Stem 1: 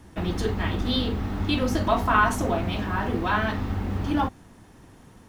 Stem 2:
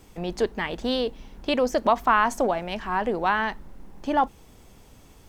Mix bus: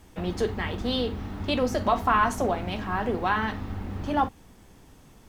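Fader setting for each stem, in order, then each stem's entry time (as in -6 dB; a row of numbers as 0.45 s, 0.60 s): -6.0 dB, -4.0 dB; 0.00 s, 0.00 s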